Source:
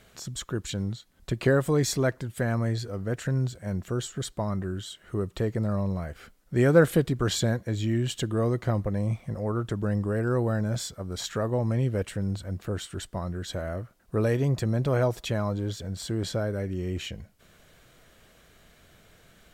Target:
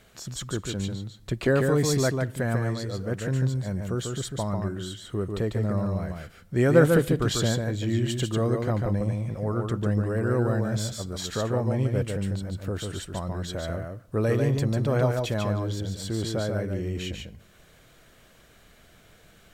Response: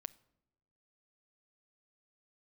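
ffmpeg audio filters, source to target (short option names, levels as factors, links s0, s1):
-filter_complex "[0:a]asplit=2[s0][s1];[1:a]atrim=start_sample=2205,adelay=145[s2];[s1][s2]afir=irnorm=-1:irlink=0,volume=1[s3];[s0][s3]amix=inputs=2:normalize=0"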